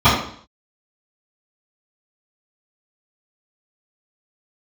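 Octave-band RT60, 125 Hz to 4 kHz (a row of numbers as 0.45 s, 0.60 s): 0.60 s, 0.55 s, 0.55 s, 0.55 s, 0.55 s, 0.55 s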